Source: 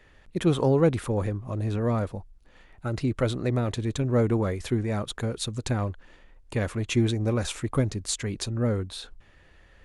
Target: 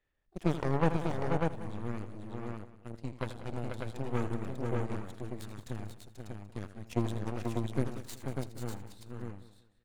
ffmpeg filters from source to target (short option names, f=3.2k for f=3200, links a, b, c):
-filter_complex "[0:a]asplit=2[a][b];[b]asetrate=88200,aresample=44100,atempo=0.5,volume=-15dB[c];[a][c]amix=inputs=2:normalize=0,aeval=exprs='0.316*(cos(1*acos(clip(val(0)/0.316,-1,1)))-cos(1*PI/2))+0.1*(cos(3*acos(clip(val(0)/0.316,-1,1)))-cos(3*PI/2))+0.0316*(cos(4*acos(clip(val(0)/0.316,-1,1)))-cos(4*PI/2))+0.00631*(cos(6*acos(clip(val(0)/0.316,-1,1)))-cos(6*PI/2))':c=same,asplit=2[d][e];[e]aecho=0:1:81|486|594:0.237|0.473|0.596[f];[d][f]amix=inputs=2:normalize=0,aphaser=in_gain=1:out_gain=1:delay=1.4:decay=0.22:speed=0.41:type=sinusoidal,asplit=2[g][h];[h]aecho=0:1:187|374|561:0.158|0.046|0.0133[i];[g][i]amix=inputs=2:normalize=0,asoftclip=type=tanh:threshold=-9.5dB,volume=-2dB"